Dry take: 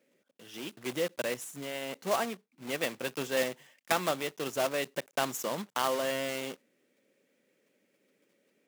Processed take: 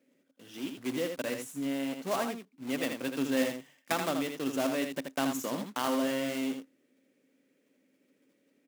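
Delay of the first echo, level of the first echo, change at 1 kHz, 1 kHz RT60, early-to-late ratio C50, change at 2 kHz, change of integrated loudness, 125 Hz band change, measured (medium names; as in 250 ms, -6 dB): 80 ms, -6.0 dB, -2.0 dB, no reverb, no reverb, -2.0 dB, 0.0 dB, +0.5 dB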